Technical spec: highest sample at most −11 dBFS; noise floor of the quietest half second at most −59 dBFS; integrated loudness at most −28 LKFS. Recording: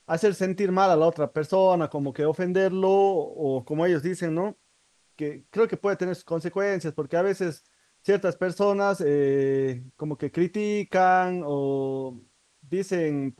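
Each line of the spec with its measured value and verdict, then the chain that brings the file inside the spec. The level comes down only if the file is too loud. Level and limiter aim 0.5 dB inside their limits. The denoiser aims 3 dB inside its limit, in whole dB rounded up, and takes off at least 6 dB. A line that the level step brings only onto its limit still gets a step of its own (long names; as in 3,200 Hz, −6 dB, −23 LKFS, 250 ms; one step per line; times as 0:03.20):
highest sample −9.0 dBFS: out of spec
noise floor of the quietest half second −65 dBFS: in spec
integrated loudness −25.0 LKFS: out of spec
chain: level −3.5 dB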